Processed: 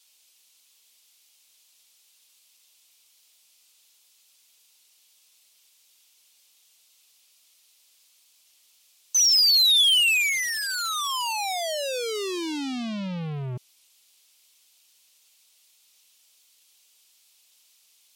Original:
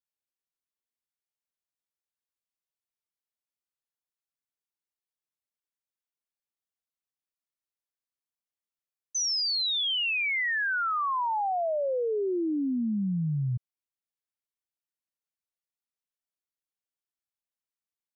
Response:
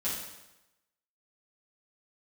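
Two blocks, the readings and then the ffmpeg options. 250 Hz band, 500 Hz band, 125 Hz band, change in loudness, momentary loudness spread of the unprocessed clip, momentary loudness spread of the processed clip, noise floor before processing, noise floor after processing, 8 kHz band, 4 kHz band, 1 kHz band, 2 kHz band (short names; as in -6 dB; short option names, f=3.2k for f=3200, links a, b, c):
-3.0 dB, -2.0 dB, -3.0 dB, +6.0 dB, 5 LU, 17 LU, under -85 dBFS, -62 dBFS, n/a, +9.5 dB, -2.5 dB, +2.5 dB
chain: -filter_complex "[0:a]asplit=2[a][b];[b]highpass=f=720:p=1,volume=34dB,asoftclip=type=tanh:threshold=-24.5dB[c];[a][c]amix=inputs=2:normalize=0,lowpass=f=1.9k:p=1,volume=-6dB,aexciter=amount=7.8:drive=5.1:freq=2.5k,volume=-2dB" -ar 48000 -c:a libmp3lame -b:a 64k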